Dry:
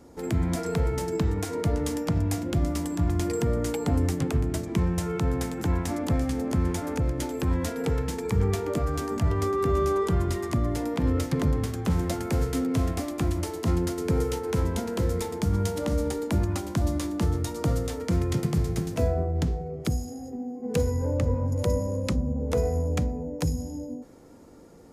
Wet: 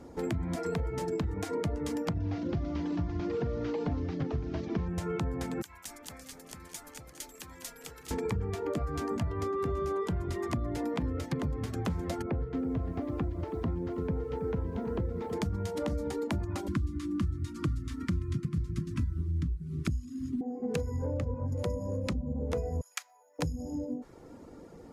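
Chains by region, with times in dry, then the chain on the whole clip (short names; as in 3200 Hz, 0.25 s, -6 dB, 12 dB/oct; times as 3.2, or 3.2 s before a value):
2.2–4.88 delta modulation 32 kbps, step -43 dBFS + doubler 41 ms -13 dB
5.62–8.11 pre-emphasis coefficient 0.97 + frequency-shifting echo 0.203 s, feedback 52%, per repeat -97 Hz, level -9 dB
12.22–15.33 tape spacing loss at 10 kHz 38 dB + lo-fi delay 0.325 s, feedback 35%, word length 8-bit, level -12 dB
16.68–20.41 CVSD 64 kbps + elliptic band-stop 340–1100 Hz + low shelf 270 Hz +9 dB
22.81–23.39 HPF 1200 Hz 24 dB/oct + high shelf 6000 Hz +10.5 dB
whole clip: high shelf 5800 Hz -10 dB; reverb removal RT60 0.5 s; compressor, threshold -32 dBFS; gain +2.5 dB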